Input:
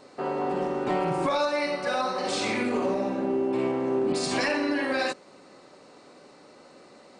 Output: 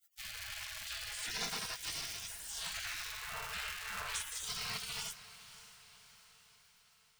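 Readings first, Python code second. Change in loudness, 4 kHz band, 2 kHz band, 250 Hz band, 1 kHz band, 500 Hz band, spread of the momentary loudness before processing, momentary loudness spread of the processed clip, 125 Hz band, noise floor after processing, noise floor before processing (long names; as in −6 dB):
−12.5 dB, −4.0 dB, −10.0 dB, −32.0 dB, −18.5 dB, −31.0 dB, 3 LU, 16 LU, −16.5 dB, −68 dBFS, −53 dBFS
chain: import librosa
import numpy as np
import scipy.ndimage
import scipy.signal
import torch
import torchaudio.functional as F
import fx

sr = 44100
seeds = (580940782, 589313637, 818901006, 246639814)

p1 = fx.dmg_crackle(x, sr, seeds[0], per_s=520.0, level_db=-38.0)
p2 = np.sign(p1) * np.maximum(np.abs(p1) - 10.0 ** (-54.5 / 20.0), 0.0)
p3 = fx.spec_gate(p2, sr, threshold_db=-30, keep='weak')
p4 = p3 + fx.echo_diffused(p3, sr, ms=563, feedback_pct=55, wet_db=-15, dry=0)
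y = p4 * 10.0 ** (6.5 / 20.0)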